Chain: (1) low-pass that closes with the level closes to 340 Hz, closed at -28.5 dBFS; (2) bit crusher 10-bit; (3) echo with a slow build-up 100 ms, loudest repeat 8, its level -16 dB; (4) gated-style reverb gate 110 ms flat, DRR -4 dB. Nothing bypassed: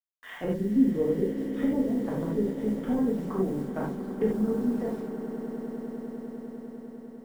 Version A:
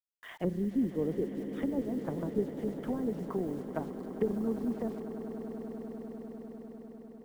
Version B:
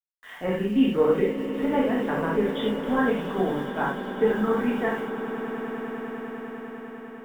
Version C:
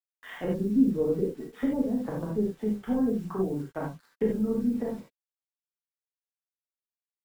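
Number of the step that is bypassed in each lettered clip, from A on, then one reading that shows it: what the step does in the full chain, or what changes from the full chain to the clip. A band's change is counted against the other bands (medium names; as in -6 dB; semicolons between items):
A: 4, echo-to-direct 6.0 dB to -4.5 dB; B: 1, 2 kHz band +11.5 dB; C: 3, echo-to-direct 6.0 dB to 4.0 dB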